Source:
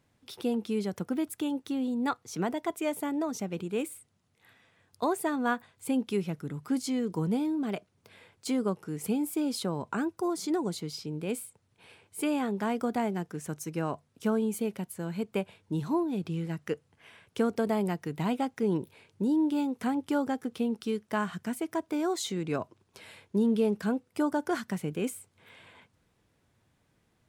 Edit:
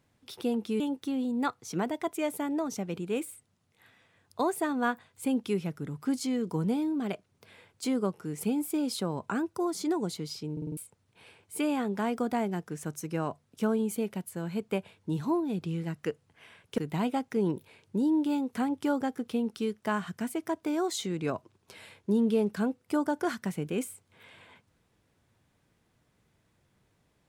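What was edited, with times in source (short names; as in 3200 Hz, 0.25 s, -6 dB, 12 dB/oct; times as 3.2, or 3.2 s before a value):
0.8–1.43 cut
11.15 stutter in place 0.05 s, 5 plays
17.41–18.04 cut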